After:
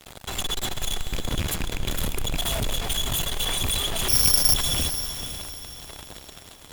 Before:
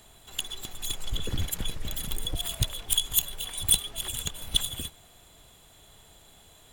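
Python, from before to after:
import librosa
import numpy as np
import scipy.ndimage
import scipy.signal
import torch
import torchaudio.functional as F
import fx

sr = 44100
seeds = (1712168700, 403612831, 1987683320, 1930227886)

p1 = fx.rattle_buzz(x, sr, strikes_db=-31.0, level_db=-21.0)
p2 = fx.high_shelf(p1, sr, hz=3300.0, db=-8.5)
p3 = fx.over_compress(p2, sr, threshold_db=-31.0, ratio=-0.5)
p4 = p2 + F.gain(torch.from_numpy(p3), 2.5).numpy()
p5 = fx.fuzz(p4, sr, gain_db=40.0, gate_db=-43.0)
p6 = fx.resample_bad(p5, sr, factor=8, down='filtered', up='zero_stuff', at=(4.08, 4.54))
p7 = p6 + fx.echo_diffused(p6, sr, ms=492, feedback_pct=40, wet_db=-9.5, dry=0)
y = F.gain(torch.from_numpy(p7), -10.0).numpy()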